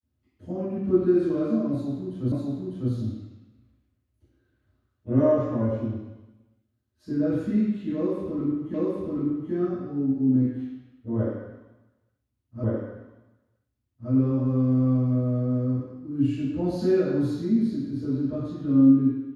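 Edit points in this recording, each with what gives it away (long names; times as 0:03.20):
0:02.32: the same again, the last 0.6 s
0:08.74: the same again, the last 0.78 s
0:12.64: the same again, the last 1.47 s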